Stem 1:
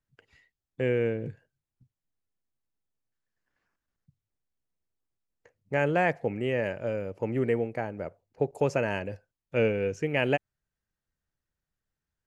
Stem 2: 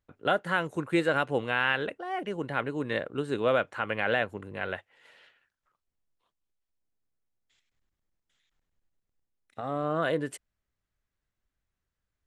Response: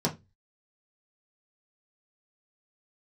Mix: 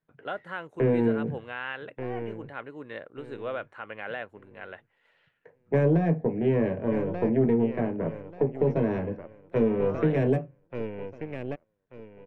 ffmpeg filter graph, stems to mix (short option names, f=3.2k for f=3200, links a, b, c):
-filter_complex "[0:a]lowpass=3.9k,aeval=exprs='0.251*(cos(1*acos(clip(val(0)/0.251,-1,1)))-cos(1*PI/2))+0.0282*(cos(3*acos(clip(val(0)/0.251,-1,1)))-cos(3*PI/2))+0.0224*(cos(6*acos(clip(val(0)/0.251,-1,1)))-cos(6*PI/2))':c=same,acrossover=split=460[a][b];[b]acompressor=threshold=-45dB:ratio=2.5[c];[a][c]amix=inputs=2:normalize=0,volume=2dB,asplit=3[d][e][f];[e]volume=-6dB[g];[f]volume=-4dB[h];[1:a]volume=-8dB[i];[2:a]atrim=start_sample=2205[j];[g][j]afir=irnorm=-1:irlink=0[k];[h]aecho=0:1:1186|2372|3558|4744:1|0.24|0.0576|0.0138[l];[d][i][k][l]amix=inputs=4:normalize=0,bass=f=250:g=-5,treble=f=4k:g=-12,alimiter=limit=-14dB:level=0:latency=1:release=366"